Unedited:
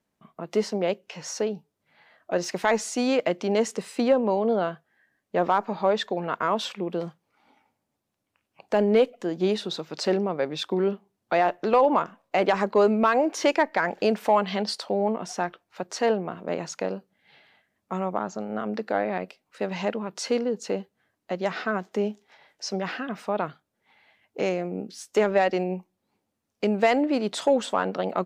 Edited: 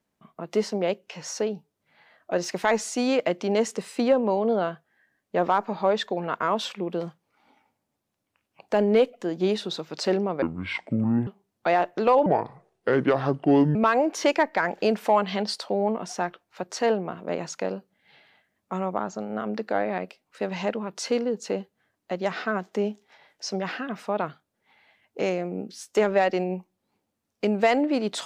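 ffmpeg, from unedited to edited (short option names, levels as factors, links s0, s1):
-filter_complex "[0:a]asplit=5[s0][s1][s2][s3][s4];[s0]atrim=end=10.424[s5];[s1]atrim=start=10.42:end=10.93,asetpts=PTS-STARTPTS,asetrate=26460,aresample=44100[s6];[s2]atrim=start=10.926:end=11.924[s7];[s3]atrim=start=11.92:end=12.95,asetpts=PTS-STARTPTS,asetrate=30429,aresample=44100,atrim=end_sample=65830,asetpts=PTS-STARTPTS[s8];[s4]atrim=start=12.946[s9];[s5][s6]acrossfade=d=0.004:c1=hsin:c2=hsin[s10];[s10][s7]acrossfade=d=0.004:c1=hsin:c2=hsin[s11];[s11][s8]acrossfade=d=0.004:c1=hsin:c2=hsin[s12];[s12][s9]acrossfade=d=0.004:c1=hsin:c2=hsin"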